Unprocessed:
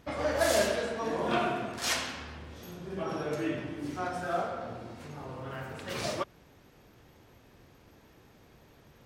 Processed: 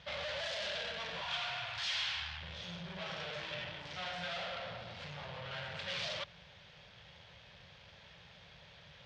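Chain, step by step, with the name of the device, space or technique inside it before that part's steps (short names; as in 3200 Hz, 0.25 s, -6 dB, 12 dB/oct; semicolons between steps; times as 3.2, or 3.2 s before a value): 1.21–2.41 elliptic band-stop 130–770 Hz; scooped metal amplifier (tube stage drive 44 dB, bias 0.55; speaker cabinet 75–4500 Hz, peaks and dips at 170 Hz +10 dB, 560 Hz +8 dB, 1200 Hz -4 dB, 3300 Hz +5 dB; passive tone stack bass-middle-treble 10-0-10); gain +13 dB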